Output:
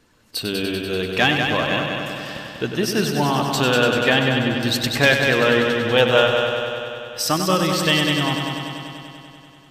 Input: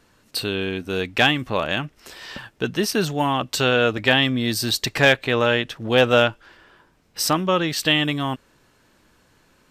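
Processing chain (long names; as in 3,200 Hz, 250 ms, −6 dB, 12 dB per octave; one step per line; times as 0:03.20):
spectral magnitudes quantised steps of 15 dB
0:04.19–0:04.63: low-pass filter 1,200 Hz 12 dB per octave
echo machine with several playback heads 97 ms, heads first and second, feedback 70%, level −8 dB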